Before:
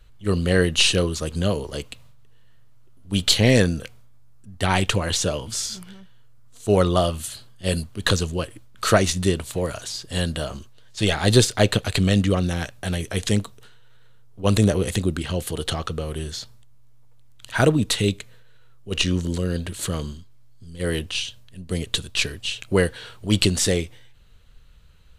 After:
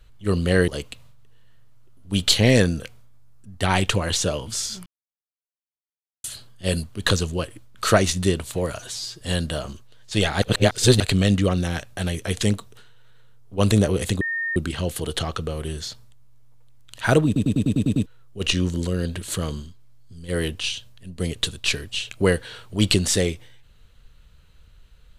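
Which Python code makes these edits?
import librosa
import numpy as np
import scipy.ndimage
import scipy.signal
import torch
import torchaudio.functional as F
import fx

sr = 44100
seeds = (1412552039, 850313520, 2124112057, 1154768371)

y = fx.edit(x, sr, fx.cut(start_s=0.68, length_s=1.0),
    fx.silence(start_s=5.86, length_s=1.38),
    fx.stretch_span(start_s=9.79, length_s=0.28, factor=1.5),
    fx.reverse_span(start_s=11.28, length_s=0.58),
    fx.insert_tone(at_s=15.07, length_s=0.35, hz=1830.0, db=-23.0),
    fx.stutter_over(start_s=17.77, slice_s=0.1, count=8), tone=tone)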